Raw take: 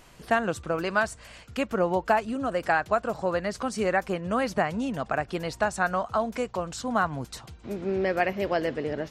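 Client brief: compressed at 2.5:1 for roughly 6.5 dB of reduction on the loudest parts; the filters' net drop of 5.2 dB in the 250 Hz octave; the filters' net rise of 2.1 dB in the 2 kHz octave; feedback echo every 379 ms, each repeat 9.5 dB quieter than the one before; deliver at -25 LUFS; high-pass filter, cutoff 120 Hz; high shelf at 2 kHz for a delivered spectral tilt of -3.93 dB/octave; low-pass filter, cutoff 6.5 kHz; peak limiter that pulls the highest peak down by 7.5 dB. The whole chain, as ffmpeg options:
-af "highpass=120,lowpass=6500,equalizer=f=250:t=o:g=-6.5,highshelf=f=2000:g=-8,equalizer=f=2000:t=o:g=7.5,acompressor=threshold=0.0398:ratio=2.5,alimiter=limit=0.0794:level=0:latency=1,aecho=1:1:379|758|1137|1516:0.335|0.111|0.0365|0.012,volume=2.82"

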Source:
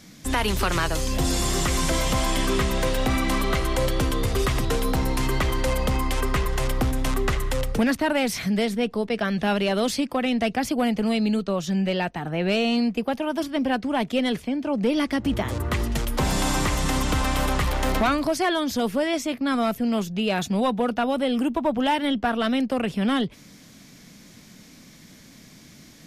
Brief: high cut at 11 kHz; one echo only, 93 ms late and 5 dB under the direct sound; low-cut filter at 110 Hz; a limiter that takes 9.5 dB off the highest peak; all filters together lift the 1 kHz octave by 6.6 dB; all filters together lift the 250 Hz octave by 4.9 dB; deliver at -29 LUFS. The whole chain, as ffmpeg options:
-af "highpass=110,lowpass=11000,equalizer=f=250:t=o:g=5.5,equalizer=f=1000:t=o:g=8,alimiter=limit=0.178:level=0:latency=1,aecho=1:1:93:0.562,volume=0.473"

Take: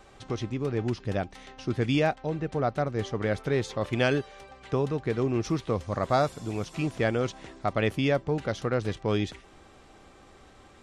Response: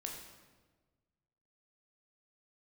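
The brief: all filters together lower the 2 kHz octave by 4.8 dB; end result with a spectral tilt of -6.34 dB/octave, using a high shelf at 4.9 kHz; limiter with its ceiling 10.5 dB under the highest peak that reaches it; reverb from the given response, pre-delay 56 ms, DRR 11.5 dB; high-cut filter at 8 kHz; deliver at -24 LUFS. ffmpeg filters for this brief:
-filter_complex "[0:a]lowpass=8000,equalizer=f=2000:t=o:g=-7,highshelf=f=4900:g=3.5,alimiter=limit=0.0668:level=0:latency=1,asplit=2[s0][s1];[1:a]atrim=start_sample=2205,adelay=56[s2];[s1][s2]afir=irnorm=-1:irlink=0,volume=0.316[s3];[s0][s3]amix=inputs=2:normalize=0,volume=3.16"

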